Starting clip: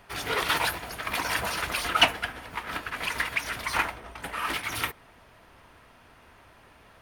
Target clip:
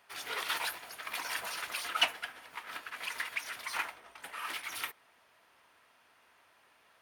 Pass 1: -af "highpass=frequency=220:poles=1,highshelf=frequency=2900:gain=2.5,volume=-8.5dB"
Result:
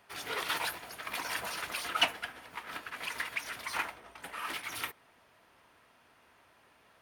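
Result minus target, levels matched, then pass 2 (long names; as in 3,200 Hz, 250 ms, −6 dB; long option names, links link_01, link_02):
250 Hz band +6.5 dB
-af "highpass=frequency=780:poles=1,highshelf=frequency=2900:gain=2.5,volume=-8.5dB"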